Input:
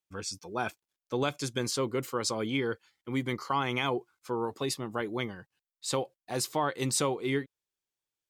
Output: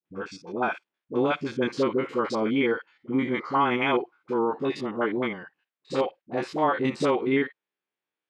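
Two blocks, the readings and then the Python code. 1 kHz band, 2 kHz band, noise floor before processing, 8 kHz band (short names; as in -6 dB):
+6.5 dB, +6.0 dB, under -85 dBFS, under -15 dB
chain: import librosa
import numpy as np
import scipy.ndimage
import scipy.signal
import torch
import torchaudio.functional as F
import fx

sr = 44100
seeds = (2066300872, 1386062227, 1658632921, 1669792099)

y = fx.spec_steps(x, sr, hold_ms=50)
y = scipy.signal.sosfilt(scipy.signal.cheby1(2, 1.0, [220.0, 2300.0], 'bandpass', fs=sr, output='sos'), y)
y = fx.dispersion(y, sr, late='highs', ms=57.0, hz=570.0)
y = F.gain(torch.from_numpy(y), 8.5).numpy()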